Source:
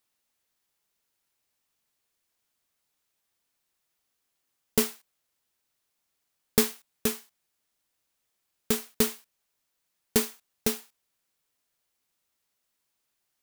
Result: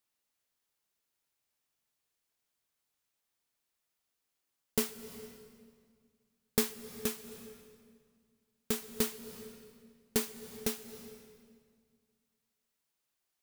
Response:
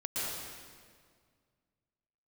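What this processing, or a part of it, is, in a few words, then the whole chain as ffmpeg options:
ducked reverb: -filter_complex "[0:a]asplit=3[a][b][c];[1:a]atrim=start_sample=2205[d];[b][d]afir=irnorm=-1:irlink=0[e];[c]apad=whole_len=592225[f];[e][f]sidechaincompress=threshold=-36dB:ratio=8:attack=16:release=286,volume=-11.5dB[g];[a][g]amix=inputs=2:normalize=0,volume=-7dB"

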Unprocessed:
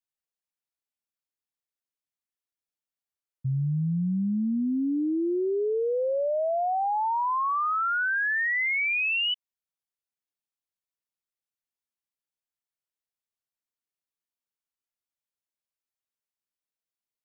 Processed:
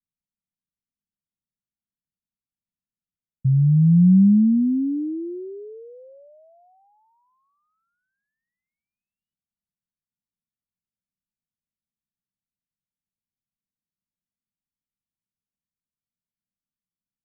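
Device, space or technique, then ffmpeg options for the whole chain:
the neighbour's flat through the wall: -af "lowpass=f=240:w=0.5412,lowpass=f=240:w=1.3066,equalizer=f=190:t=o:w=0.62:g=6.5,volume=8dB"

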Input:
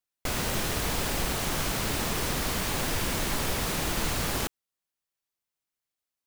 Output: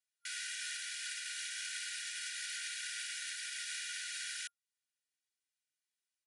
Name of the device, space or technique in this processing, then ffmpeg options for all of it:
soft clipper into limiter: -af "asoftclip=type=tanh:threshold=-18dB,alimiter=level_in=3dB:limit=-24dB:level=0:latency=1:release=307,volume=-3dB,afftfilt=real='re*between(b*sr/4096,1400,11000)':imag='im*between(b*sr/4096,1400,11000)':win_size=4096:overlap=0.75,aecho=1:1:2.1:0.6,volume=-2.5dB"

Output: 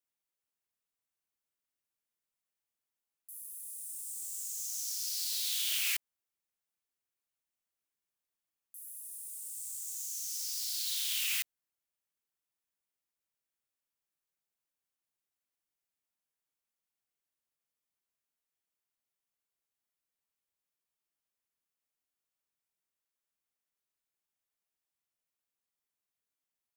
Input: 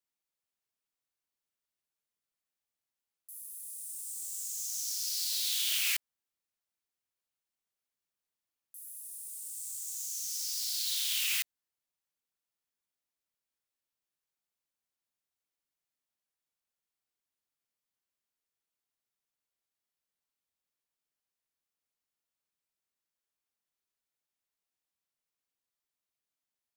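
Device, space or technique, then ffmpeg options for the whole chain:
exciter from parts: -filter_complex "[0:a]asplit=2[a][b];[b]highpass=f=3.4k:w=0.5412,highpass=f=3.4k:w=1.3066,asoftclip=type=tanh:threshold=-35.5dB,highpass=f=2.9k:p=1,volume=-11dB[c];[a][c]amix=inputs=2:normalize=0,volume=-2dB"

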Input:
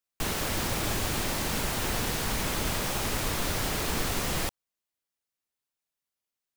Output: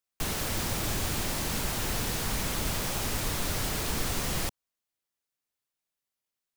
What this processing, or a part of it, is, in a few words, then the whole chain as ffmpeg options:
one-band saturation: -filter_complex "[0:a]acrossover=split=210|4000[a][b][c];[b]asoftclip=type=tanh:threshold=-32dB[d];[a][d][c]amix=inputs=3:normalize=0"

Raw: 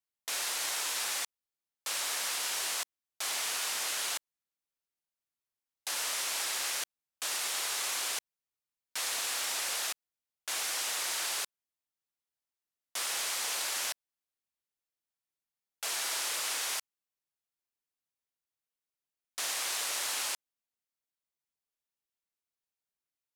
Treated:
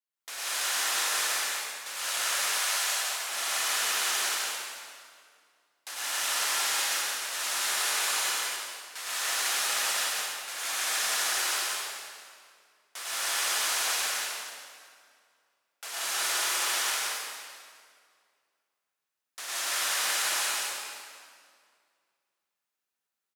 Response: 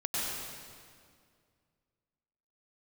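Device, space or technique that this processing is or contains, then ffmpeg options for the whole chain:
stadium PA: -filter_complex "[0:a]highpass=f=230:p=1,equalizer=f=1.5k:t=o:w=1.1:g=4,aecho=1:1:177.8|244.9:0.891|0.355[a];[1:a]atrim=start_sample=2205[b];[a][b]afir=irnorm=-1:irlink=0,asettb=1/sr,asplit=3[c][d][e];[c]atrim=end=2.584[f];[d]atrim=start=2.58:end=3.29,asetpts=PTS-STARTPTS,afade=t=in:d=0.004:c=qsin,afade=t=out:st=0.706:d=0.004:c=qsin,highpass=f=450:w=0.5412,highpass=f=450:w=1.3066[g];[e]atrim=start=3.286[h];[f][g]acrossfade=d=0.004:c1=hsin:c2=qsin[i];[i][h]acrossfade=d=0.004:c1=qsin:c2=hsin,aecho=1:1:371:0.0631,volume=-4.5dB"

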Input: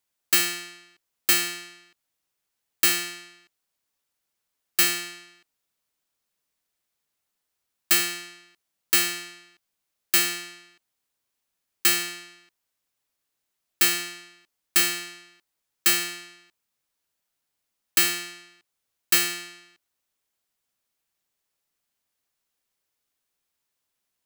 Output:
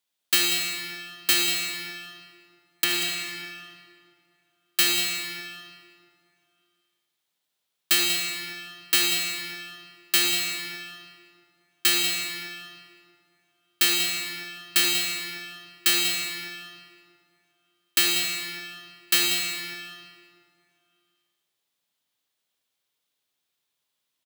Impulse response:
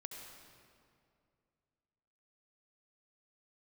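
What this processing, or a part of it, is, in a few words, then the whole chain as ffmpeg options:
PA in a hall: -filter_complex "[0:a]asettb=1/sr,asplit=3[a][b][c];[a]atrim=end=2.844[d];[b]atrim=start=2.84:end=3.24,asetpts=PTS-STARTPTS,afade=t=in:d=0.004:c=qsin,afade=t=out:st=0.396:d=0.004:c=qsin,acrossover=split=3300[e][f];[f]acompressor=threshold=-25dB:ratio=4:attack=1:release=60[g];[e][g]amix=inputs=2:normalize=0[h];[c]atrim=start=3.236[i];[d][h]acrossfade=d=0.004:c1=hsin:c2=qsin[j];[j][i]acrossfade=d=0.004:c1=qsin:c2=hsin,highpass=110,equalizer=f=3.5k:t=o:w=0.65:g=8,aecho=1:1:189:0.251[k];[1:a]atrim=start_sample=2205[l];[k][l]afir=irnorm=-1:irlink=0,volume=3dB"

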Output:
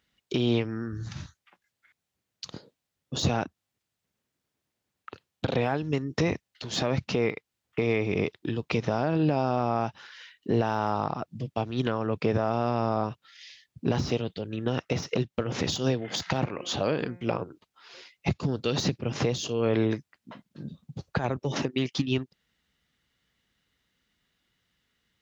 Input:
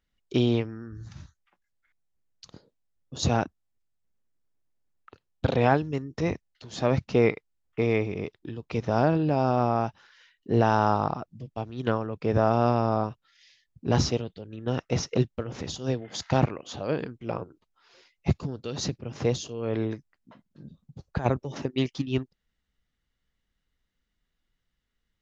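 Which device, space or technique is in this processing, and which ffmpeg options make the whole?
broadcast voice chain: -filter_complex "[0:a]asplit=3[a][b][c];[a]afade=t=out:st=16.26:d=0.02[d];[b]bandreject=f=177.3:t=h:w=4,bandreject=f=354.6:t=h:w=4,bandreject=f=531.9:t=h:w=4,bandreject=f=709.2:t=h:w=4,bandreject=f=886.5:t=h:w=4,bandreject=f=1.0638k:t=h:w=4,bandreject=f=1.2411k:t=h:w=4,bandreject=f=1.4184k:t=h:w=4,bandreject=f=1.5957k:t=h:w=4,bandreject=f=1.773k:t=h:w=4,bandreject=f=1.9503k:t=h:w=4,bandreject=f=2.1276k:t=h:w=4,bandreject=f=2.3049k:t=h:w=4,bandreject=f=2.4822k:t=h:w=4,afade=t=in:st=16.26:d=0.02,afade=t=out:st=17.27:d=0.02[e];[c]afade=t=in:st=17.27:d=0.02[f];[d][e][f]amix=inputs=3:normalize=0,highpass=90,deesser=0.95,acompressor=threshold=-27dB:ratio=3,equalizer=f=3.1k:t=o:w=1.8:g=4,alimiter=limit=-21dB:level=0:latency=1:release=189,volume=7dB"

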